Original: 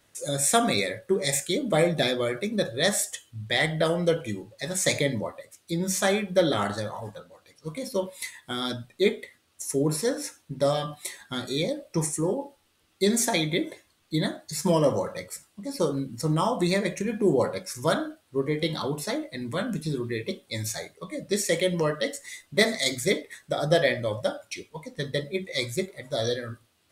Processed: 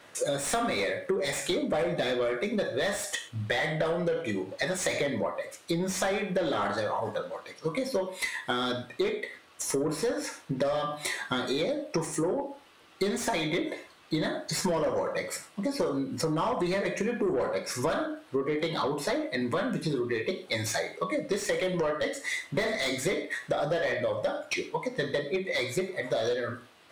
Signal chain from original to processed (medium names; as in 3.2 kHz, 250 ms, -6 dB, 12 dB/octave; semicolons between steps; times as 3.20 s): gated-style reverb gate 140 ms falling, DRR 9.5 dB; overdrive pedal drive 24 dB, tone 1.3 kHz, clips at -4.5 dBFS; compression 6:1, threshold -27 dBFS, peak gain reduction 15 dB